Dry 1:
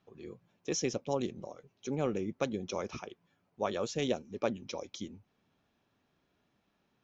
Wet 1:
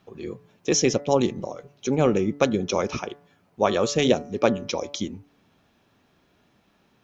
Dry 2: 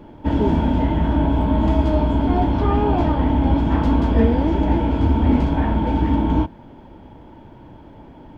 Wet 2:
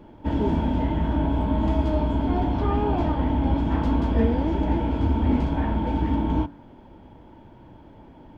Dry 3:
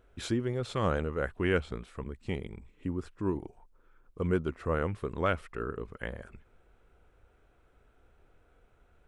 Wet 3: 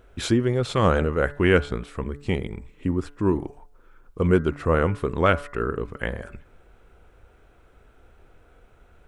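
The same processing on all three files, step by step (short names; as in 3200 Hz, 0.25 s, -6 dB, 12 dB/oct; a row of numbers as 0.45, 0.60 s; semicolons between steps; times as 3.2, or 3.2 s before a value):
de-hum 143.8 Hz, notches 14; match loudness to -24 LUFS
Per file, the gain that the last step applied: +12.5, -5.0, +9.5 dB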